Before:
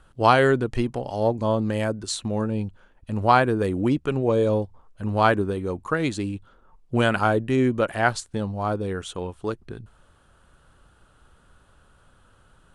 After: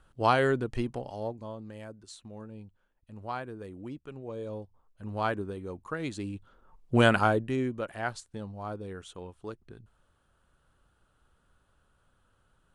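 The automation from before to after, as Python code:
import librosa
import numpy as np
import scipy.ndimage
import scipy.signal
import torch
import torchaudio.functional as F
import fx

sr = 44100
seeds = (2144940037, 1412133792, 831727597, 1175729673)

y = fx.gain(x, sr, db=fx.line((0.98, -7.0), (1.54, -19.0), (4.21, -19.0), (5.18, -11.0), (5.95, -11.0), (7.07, 0.0), (7.76, -12.0)))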